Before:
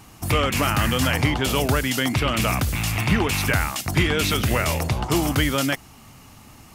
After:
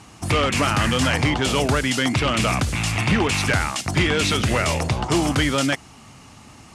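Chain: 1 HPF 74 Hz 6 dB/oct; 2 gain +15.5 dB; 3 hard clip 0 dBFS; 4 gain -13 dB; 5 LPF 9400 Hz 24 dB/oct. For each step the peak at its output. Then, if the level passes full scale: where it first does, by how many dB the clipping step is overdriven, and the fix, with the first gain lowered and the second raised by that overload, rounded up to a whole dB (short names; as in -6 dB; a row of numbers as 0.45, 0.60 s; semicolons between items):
-7.0, +8.5, 0.0, -13.0, -11.5 dBFS; step 2, 8.5 dB; step 2 +6.5 dB, step 4 -4 dB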